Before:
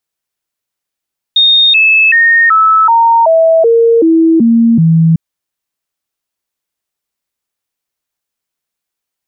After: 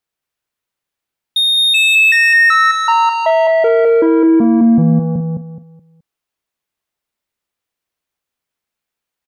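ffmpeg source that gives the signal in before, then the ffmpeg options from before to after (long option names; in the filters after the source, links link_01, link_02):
-f lavfi -i "aevalsrc='0.631*clip(min(mod(t,0.38),0.38-mod(t,0.38))/0.005,0,1)*sin(2*PI*3690*pow(2,-floor(t/0.38)/2)*mod(t,0.38))':duration=3.8:sample_rate=44100"
-filter_complex "[0:a]bass=frequency=250:gain=0,treble=frequency=4000:gain=-6,asoftclip=type=tanh:threshold=-10dB,asplit=2[link_01][link_02];[link_02]aecho=0:1:212|424|636|848:0.596|0.173|0.0501|0.0145[link_03];[link_01][link_03]amix=inputs=2:normalize=0"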